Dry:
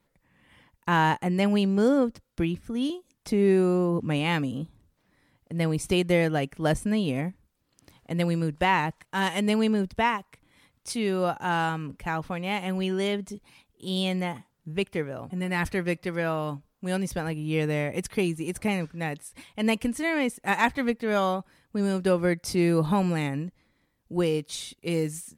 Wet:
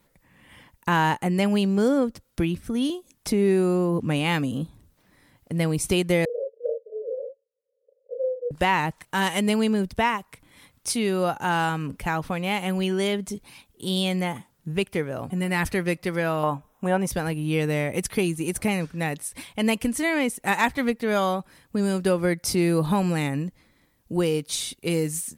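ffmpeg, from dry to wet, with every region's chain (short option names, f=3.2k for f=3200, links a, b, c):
-filter_complex "[0:a]asettb=1/sr,asplit=3[a][b][c];[a]atrim=end=6.254[d];[b]atrim=start=6.25:end=8.51,asetpts=PTS-STARTPTS,afade=t=in:d=0.004:c=qsin,afade=t=out:st=2.256:d=0.004:c=qsin,asuperpass=centerf=500:order=8:qfactor=4,asplit=2[e][f];[f]adelay=35,volume=-2.5dB[g];[e][g]amix=inputs=2:normalize=0,atrim=end_sample=99666[h];[c]atrim=start=8.506[i];[d][h]acrossfade=d=0.004:c1=hsin:c2=qsin[j];[j][i]acrossfade=d=0.004:c1=qsin:c2=hsin,asettb=1/sr,asplit=3[k][l][m];[k]atrim=end=16.434[n];[l]atrim=start=16.43:end=17.07,asetpts=PTS-STARTPTS,afade=t=in:d=0.004:c=qsin,afade=t=out:st=0.636:d=0.004:c=qsin,acrossover=split=2600[o][p];[p]acompressor=threshold=-50dB:ratio=4:attack=1:release=60[q];[o][q]amix=inputs=2:normalize=0,asuperstop=centerf=4500:order=4:qfactor=4.1,equalizer=f=870:w=0.92:g=11.5[r];[m]atrim=start=17.066[s];[n][r]acrossfade=d=0.004:c1=hsin:c2=qsin[t];[t][s]acrossfade=d=0.004:c1=qsin:c2=hsin,highshelf=f=7.6k:g=7.5,acompressor=threshold=-34dB:ratio=1.5,volume=6.5dB"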